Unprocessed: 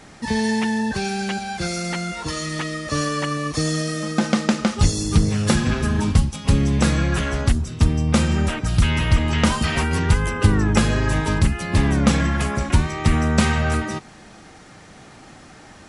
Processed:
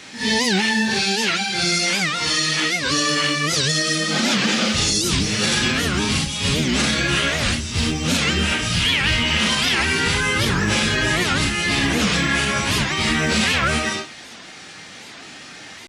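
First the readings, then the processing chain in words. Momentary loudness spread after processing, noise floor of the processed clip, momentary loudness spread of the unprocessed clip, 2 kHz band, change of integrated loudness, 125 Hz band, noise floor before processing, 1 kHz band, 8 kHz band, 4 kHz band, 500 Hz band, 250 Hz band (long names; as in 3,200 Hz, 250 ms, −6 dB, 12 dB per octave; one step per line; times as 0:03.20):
10 LU, −39 dBFS, 7 LU, +7.5 dB, +2.5 dB, −5.5 dB, −45 dBFS, +1.5 dB, +7.0 dB, +11.0 dB, +0.5 dB, −2.0 dB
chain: random phases in long frames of 200 ms
meter weighting curve D
log-companded quantiser 8 bits
brickwall limiter −11.5 dBFS, peak gain reduction 8.5 dB
wow of a warped record 78 rpm, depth 250 cents
level +2 dB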